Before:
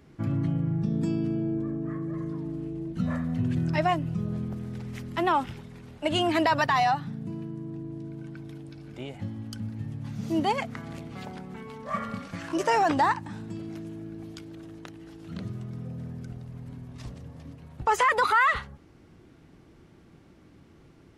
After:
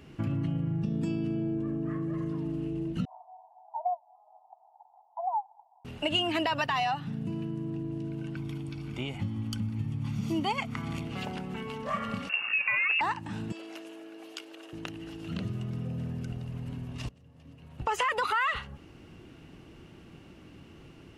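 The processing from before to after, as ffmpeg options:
ffmpeg -i in.wav -filter_complex "[0:a]asettb=1/sr,asplit=3[link_01][link_02][link_03];[link_01]atrim=end=3.054[link_04];[link_02]atrim=start=3.05:end=5.85,asetpts=PTS-STARTPTS,afade=type=in:duration=0.004:curve=qsin,afade=type=out:start_time=2.796:duration=0.004:curve=qsin,asuperpass=centerf=810:order=8:qfactor=3.3[link_05];[link_03]atrim=start=5.846[link_06];[link_04][link_05]acrossfade=duration=0.004:curve1=hsin:curve2=qsin[link_07];[link_07][link_06]acrossfade=duration=0.004:curve1=qsin:curve2=hsin,asettb=1/sr,asplit=3[link_08][link_09][link_10];[link_08]atrim=end=8.364[link_11];[link_09]atrim=start=8.36:end=11.05,asetpts=PTS-STARTPTS,afade=type=in:duration=0.004:curve=qsin,afade=type=out:start_time=2.686:duration=0.004:curve=qsin,aecho=1:1:0.9:0.48,atrim=end_sample=118629[link_12];[link_10]atrim=start=11.046[link_13];[link_11][link_12]acrossfade=duration=0.004:curve1=hsin:curve2=qsin[link_14];[link_14][link_13]acrossfade=duration=0.004:curve1=qsin:curve2=hsin,asettb=1/sr,asplit=3[link_15][link_16][link_17];[link_15]atrim=end=12.294[link_18];[link_16]atrim=start=12.29:end=13.01,asetpts=PTS-STARTPTS,afade=type=in:duration=0.004:curve=qsin,afade=type=out:start_time=0.716:duration=0.004:curve=qsin,lowpass=frequency=2500:width_type=q:width=0.5098,lowpass=frequency=2500:width_type=q:width=0.6013,lowpass=frequency=2500:width_type=q:width=0.9,lowpass=frequency=2500:width_type=q:width=2.563,afreqshift=-2900[link_19];[link_17]atrim=start=13.006[link_20];[link_18][link_19]acrossfade=duration=0.004:curve1=hsin:curve2=qsin[link_21];[link_21][link_20]acrossfade=duration=0.004:curve1=qsin:curve2=hsin,asettb=1/sr,asplit=3[link_22][link_23][link_24];[link_22]atrim=end=13.524[link_25];[link_23]atrim=start=13.52:end=14.73,asetpts=PTS-STARTPTS,afade=type=in:duration=0.004:curve=qsin,afade=type=out:start_time=1.206:duration=0.004:curve=qsin,highpass=frequency=420:width=0.5412,highpass=frequency=420:width=1.3066[link_26];[link_24]atrim=start=14.726[link_27];[link_25][link_26]acrossfade=duration=0.004:curve1=hsin:curve2=qsin[link_28];[link_28][link_27]acrossfade=duration=0.004:curve1=qsin:curve2=hsin,asplit=2[link_29][link_30];[link_29]atrim=end=17.09,asetpts=PTS-STARTPTS,afade=type=out:start_time=17.086:duration=0.004:curve=hsin:silence=0.112202[link_31];[link_30]atrim=start=17.09,asetpts=PTS-STARTPTS,afade=type=in:duration=0.94:curve=qua:silence=0.112202[link_32];[link_31][link_32]concat=n=2:v=0:a=1,equalizer=frequency=2800:width_type=o:width=0.22:gain=12.5,acompressor=threshold=-34dB:ratio=2.5,volume=3.5dB" out.wav

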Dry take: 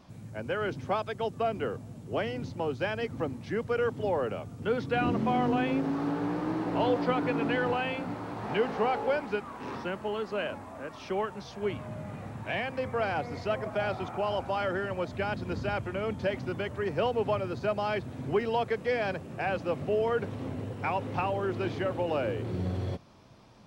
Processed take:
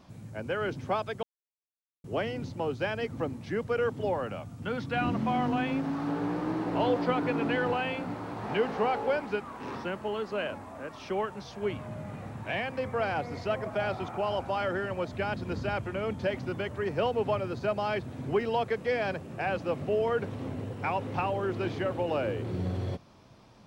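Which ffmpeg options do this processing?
ffmpeg -i in.wav -filter_complex "[0:a]asettb=1/sr,asplit=3[link_01][link_02][link_03];[link_01]atrim=end=4.134[link_04];[link_02]atrim=start=4.13:end=6.09,asetpts=PTS-STARTPTS,afade=type=in:duration=0.004:curve=qsin,afade=type=out:start_time=1.956:duration=0.004:curve=qsin,equalizer=frequency=420:width_type=o:width=0.54:gain=-9[link_05];[link_03]atrim=start=6.086[link_06];[link_04][link_05]acrossfade=duration=0.004:curve1=hsin:curve2=qsin[link_07];[link_07][link_06]acrossfade=duration=0.004:curve1=qsin:curve2=hsin,asplit=3[link_08][link_09][link_10];[link_08]atrim=end=1.23,asetpts=PTS-STARTPTS,afade=type=out:start_time=1.226:duration=0.004:curve=hsin[link_11];[link_09]atrim=start=1.23:end=2.04,asetpts=PTS-STARTPTS,volume=0[link_12];[link_10]atrim=start=2.04,asetpts=PTS-STARTPTS,afade=type=in:duration=0.004:curve=hsin[link_13];[link_11][link_12][link_13]concat=n=3:v=0:a=1" out.wav

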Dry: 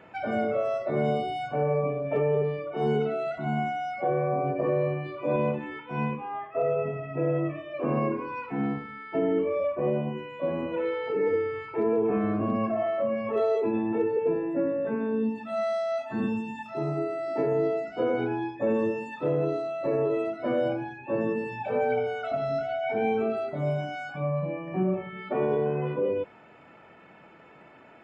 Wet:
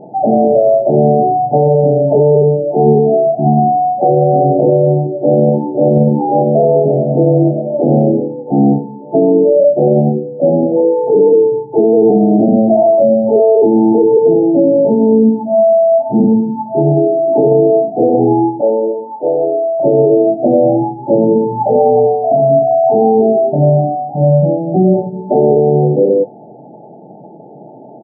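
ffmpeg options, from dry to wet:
ffmpeg -i in.wav -filter_complex "[0:a]asplit=2[link_01][link_02];[link_02]afade=type=in:start_time=5.2:duration=0.01,afade=type=out:start_time=5.83:duration=0.01,aecho=0:1:540|1080|1620|2160|2700|3240|3780|4320|4860:0.944061|0.566437|0.339862|0.203917|0.12235|0.0734102|0.0440461|0.0264277|0.0158566[link_03];[link_01][link_03]amix=inputs=2:normalize=0,asettb=1/sr,asplit=3[link_04][link_05][link_06];[link_04]atrim=end=18.614[link_07];[link_05]atrim=start=18.61:end=19.8,asetpts=PTS-STARTPTS,afade=type=in:duration=0.004:curve=qsin,afade=type=out:start_time=1.186:duration=0.004:curve=qsin,highpass=600[link_08];[link_06]atrim=start=19.796[link_09];[link_07][link_08]acrossfade=duration=0.004:curve1=hsin:curve2=qsin[link_10];[link_10][link_09]acrossfade=duration=0.004:curve1=qsin:curve2=hsin,bandreject=frequency=520:width=16,afftfilt=real='re*between(b*sr/4096,110,890)':imag='im*between(b*sr/4096,110,890)':win_size=4096:overlap=0.75,alimiter=level_in=20.5dB:limit=-1dB:release=50:level=0:latency=1,volume=-1dB" out.wav

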